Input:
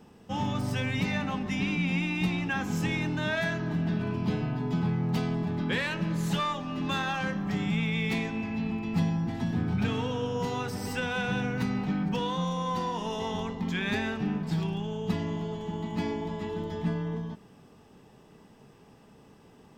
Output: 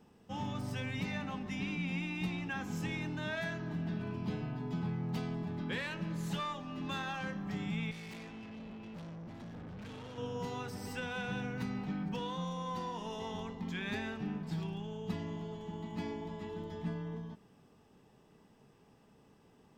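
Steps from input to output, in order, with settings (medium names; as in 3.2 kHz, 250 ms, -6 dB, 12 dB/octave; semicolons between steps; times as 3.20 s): 7.91–10.18 s: valve stage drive 36 dB, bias 0.55; trim -8.5 dB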